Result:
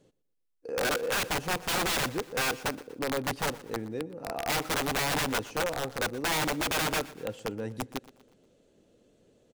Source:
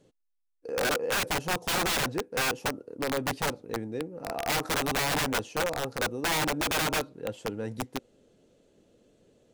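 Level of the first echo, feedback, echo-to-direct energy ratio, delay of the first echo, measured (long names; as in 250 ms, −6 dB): −19.0 dB, 45%, −18.0 dB, 120 ms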